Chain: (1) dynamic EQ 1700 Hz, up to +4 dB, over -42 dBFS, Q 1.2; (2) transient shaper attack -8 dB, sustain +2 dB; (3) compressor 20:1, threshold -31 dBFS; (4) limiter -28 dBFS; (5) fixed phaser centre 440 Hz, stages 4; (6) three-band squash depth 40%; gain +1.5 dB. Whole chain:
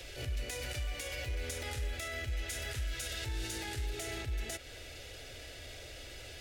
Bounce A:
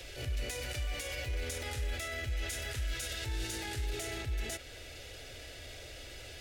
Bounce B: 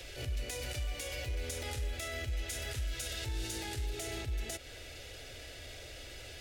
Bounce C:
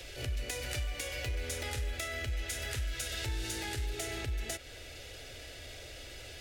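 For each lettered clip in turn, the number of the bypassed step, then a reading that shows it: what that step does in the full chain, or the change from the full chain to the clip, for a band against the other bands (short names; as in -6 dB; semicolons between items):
3, mean gain reduction 4.5 dB; 1, 2 kHz band -2.0 dB; 4, crest factor change +2.5 dB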